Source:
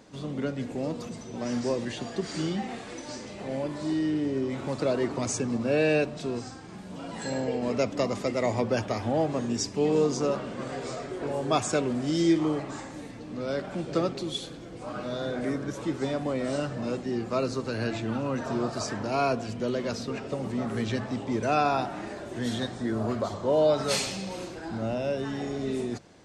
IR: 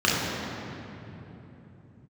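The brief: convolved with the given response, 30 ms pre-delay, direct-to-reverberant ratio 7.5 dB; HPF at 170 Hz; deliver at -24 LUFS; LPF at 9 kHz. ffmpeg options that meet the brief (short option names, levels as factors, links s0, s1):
-filter_complex "[0:a]highpass=170,lowpass=9000,asplit=2[s0][s1];[1:a]atrim=start_sample=2205,adelay=30[s2];[s1][s2]afir=irnorm=-1:irlink=0,volume=0.0501[s3];[s0][s3]amix=inputs=2:normalize=0,volume=1.68"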